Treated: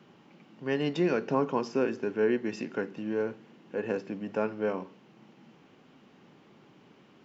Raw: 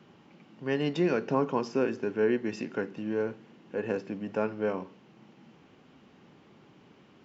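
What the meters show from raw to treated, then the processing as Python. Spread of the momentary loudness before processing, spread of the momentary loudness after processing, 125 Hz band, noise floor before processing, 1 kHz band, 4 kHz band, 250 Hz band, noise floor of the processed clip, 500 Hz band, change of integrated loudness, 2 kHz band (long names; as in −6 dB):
10 LU, 10 LU, −1.5 dB, −59 dBFS, 0.0 dB, 0.0 dB, −0.5 dB, −59 dBFS, 0.0 dB, 0.0 dB, 0.0 dB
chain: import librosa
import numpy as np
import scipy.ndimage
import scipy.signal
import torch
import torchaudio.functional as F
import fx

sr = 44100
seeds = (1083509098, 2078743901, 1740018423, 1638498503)

y = fx.peak_eq(x, sr, hz=72.0, db=-11.0, octaves=0.75)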